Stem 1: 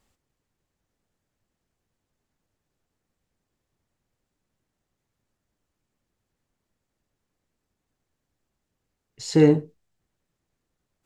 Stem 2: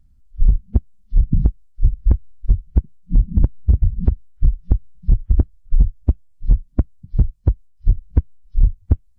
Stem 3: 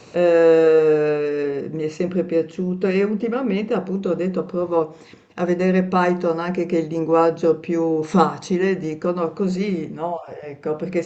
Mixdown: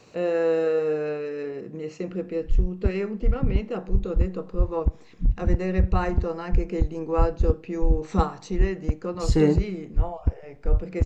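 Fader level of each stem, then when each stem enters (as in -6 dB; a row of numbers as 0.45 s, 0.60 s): -3.5 dB, -7.5 dB, -9.0 dB; 0.00 s, 2.10 s, 0.00 s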